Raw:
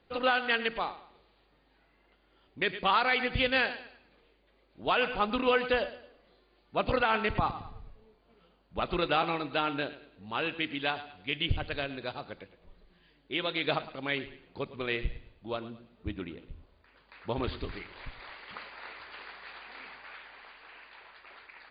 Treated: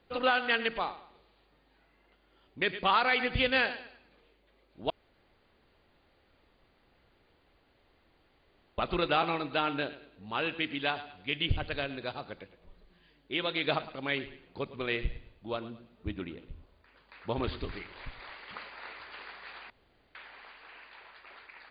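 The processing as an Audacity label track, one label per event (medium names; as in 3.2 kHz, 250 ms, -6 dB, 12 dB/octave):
4.900000	8.780000	room tone
19.700000	20.150000	room tone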